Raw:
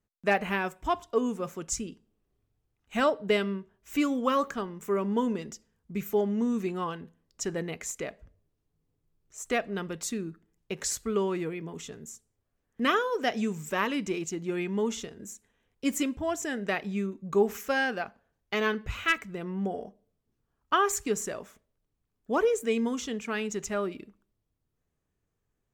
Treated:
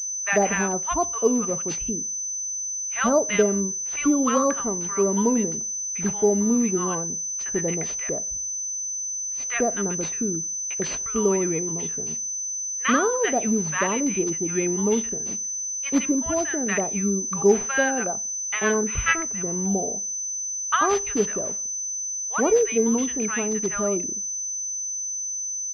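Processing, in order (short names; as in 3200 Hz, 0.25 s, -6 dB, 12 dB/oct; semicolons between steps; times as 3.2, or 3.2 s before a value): bands offset in time highs, lows 90 ms, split 1000 Hz; pulse-width modulation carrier 6100 Hz; gain +6.5 dB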